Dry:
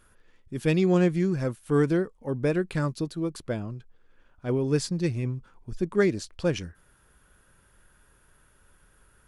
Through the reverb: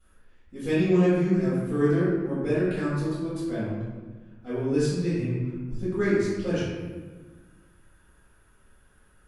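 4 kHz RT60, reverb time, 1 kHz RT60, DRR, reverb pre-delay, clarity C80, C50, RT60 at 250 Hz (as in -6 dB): 0.85 s, 1.4 s, 1.3 s, -14.5 dB, 3 ms, 0.5 dB, -2.0 dB, 2.0 s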